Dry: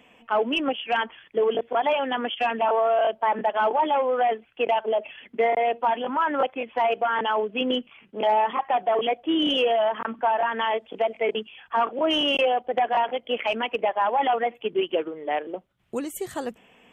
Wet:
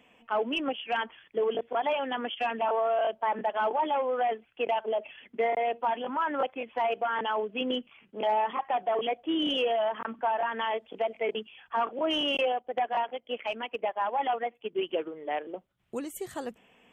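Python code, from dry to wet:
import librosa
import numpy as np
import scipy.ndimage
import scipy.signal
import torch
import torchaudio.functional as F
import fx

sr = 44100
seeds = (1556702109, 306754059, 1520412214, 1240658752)

y = fx.upward_expand(x, sr, threshold_db=-37.0, expansion=1.5, at=(12.52, 14.81))
y = y * 10.0 ** (-5.5 / 20.0)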